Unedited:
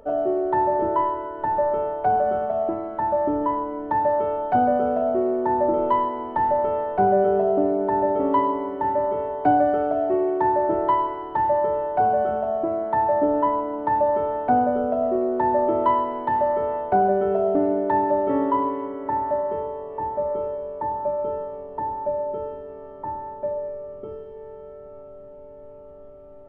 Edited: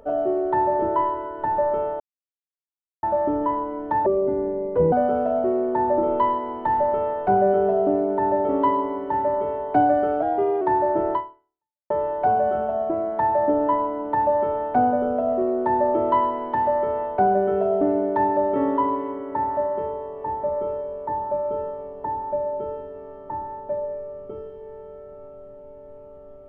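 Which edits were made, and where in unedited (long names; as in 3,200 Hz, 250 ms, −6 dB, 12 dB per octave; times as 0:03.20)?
0:02.00–0:03.03: silence
0:04.06–0:04.63: play speed 66%
0:09.93–0:10.35: play speed 108%
0:10.87–0:11.64: fade out exponential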